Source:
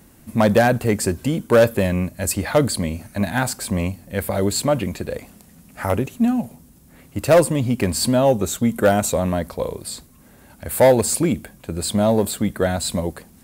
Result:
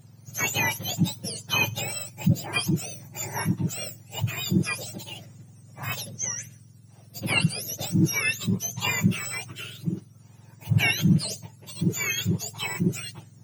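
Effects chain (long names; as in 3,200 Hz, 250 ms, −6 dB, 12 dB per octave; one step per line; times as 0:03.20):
frequency axis turned over on the octave scale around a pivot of 1,200 Hz
level −6.5 dB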